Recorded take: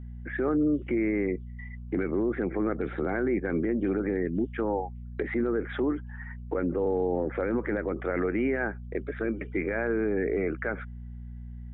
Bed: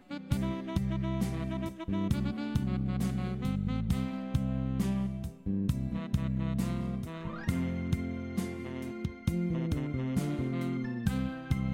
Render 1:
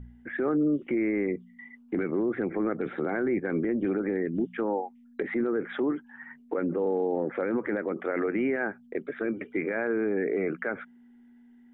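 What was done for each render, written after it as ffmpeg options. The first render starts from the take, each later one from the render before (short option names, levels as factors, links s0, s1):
-af "bandreject=f=60:t=h:w=4,bandreject=f=120:t=h:w=4,bandreject=f=180:t=h:w=4"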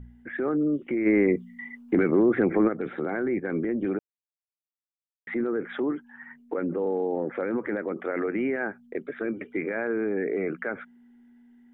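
-filter_complex "[0:a]asplit=3[s0][s1][s2];[s0]afade=t=out:st=1.05:d=0.02[s3];[s1]acontrast=85,afade=t=in:st=1.05:d=0.02,afade=t=out:st=2.67:d=0.02[s4];[s2]afade=t=in:st=2.67:d=0.02[s5];[s3][s4][s5]amix=inputs=3:normalize=0,asplit=3[s6][s7][s8];[s6]atrim=end=3.99,asetpts=PTS-STARTPTS,afade=t=out:st=3.986:d=0.004:c=hsin[s9];[s7]atrim=start=3.99:end=5.27,asetpts=PTS-STARTPTS,volume=0[s10];[s8]atrim=start=5.27,asetpts=PTS-STARTPTS,afade=t=in:d=0.004:c=hsin[s11];[s9][s10][s11]concat=n=3:v=0:a=1"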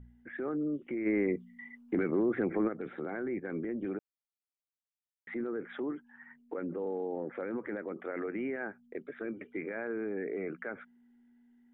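-af "volume=0.376"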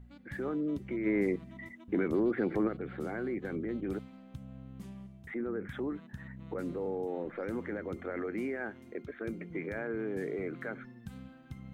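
-filter_complex "[1:a]volume=0.168[s0];[0:a][s0]amix=inputs=2:normalize=0"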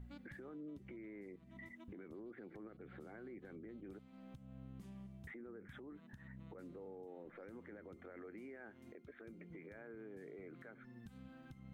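-af "acompressor=threshold=0.00501:ratio=3,alimiter=level_in=10:limit=0.0631:level=0:latency=1:release=447,volume=0.1"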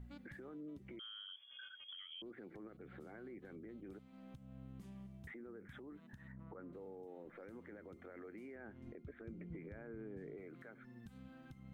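-filter_complex "[0:a]asettb=1/sr,asplit=3[s0][s1][s2];[s0]atrim=end=0.994[s3];[s1]atrim=start=0.99:end=2.22,asetpts=PTS-STARTPTS,afade=t=in:d=0.004:c=qsin,afade=t=out:st=1.226:d=0.004:c=qsin,lowpass=f=3000:t=q:w=0.5098,lowpass=f=3000:t=q:w=0.6013,lowpass=f=3000:t=q:w=0.9,lowpass=f=3000:t=q:w=2.563,afreqshift=-3500[s4];[s2]atrim=start=2.216[s5];[s3][s4]acrossfade=d=0.004:c1=hsin:c2=qsin[s6];[s6][s5]acrossfade=d=0.004:c1=qsin:c2=hsin,asettb=1/sr,asplit=3[s7][s8][s9];[s7]atrim=end=6.324[s10];[s8]atrim=start=6.32:end=6.73,asetpts=PTS-STARTPTS,afade=t=in:d=0.004:c=qsin,afade=t=out:st=0.406:d=0.004:c=qsin,lowpass=f=1300:t=q:w=1.9[s11];[s9]atrim=start=6.726[s12];[s10][s11]acrossfade=d=0.004:c1=hsin:c2=qsin[s13];[s13][s12]acrossfade=d=0.004:c1=qsin:c2=hsin,asettb=1/sr,asplit=3[s14][s15][s16];[s14]atrim=end=8.554[s17];[s15]atrim=start=8.55:end=10.38,asetpts=PTS-STARTPTS,afade=t=in:d=0.004:c=qsin,afade=t=out:st=1.826:d=0.004:c=qsin,aemphasis=mode=reproduction:type=bsi[s18];[s16]atrim=start=10.376[s19];[s17][s18]acrossfade=d=0.004:c1=hsin:c2=qsin[s20];[s20][s19]acrossfade=d=0.004:c1=qsin:c2=hsin"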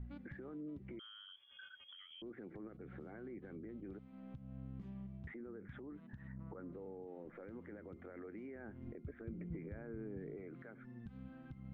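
-af "lowpass=2700,lowshelf=f=290:g=6"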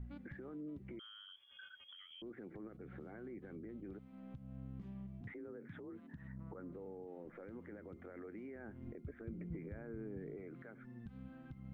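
-filter_complex "[0:a]asettb=1/sr,asplit=3[s0][s1][s2];[s0]atrim=end=5.214[s3];[s1]atrim=start=5.21:end=6.16,asetpts=PTS-STARTPTS,afade=t=in:d=0.004:c=qsin,afade=t=out:st=0.946:d=0.004:c=qsin,afreqshift=36[s4];[s2]atrim=start=6.156[s5];[s3][s4]acrossfade=d=0.004:c1=hsin:c2=qsin[s6];[s6][s5]acrossfade=d=0.004:c1=qsin:c2=hsin"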